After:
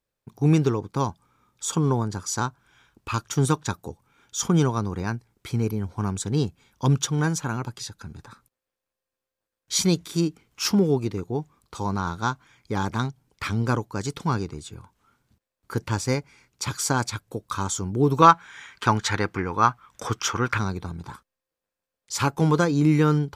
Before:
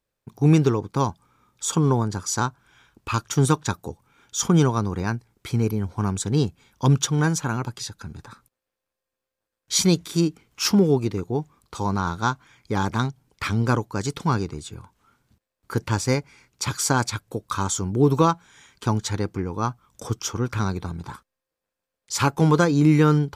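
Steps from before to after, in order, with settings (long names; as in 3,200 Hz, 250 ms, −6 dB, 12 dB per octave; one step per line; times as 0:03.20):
0:18.22–0:20.58: parametric band 1,700 Hz +14 dB 2.4 octaves
level −2.5 dB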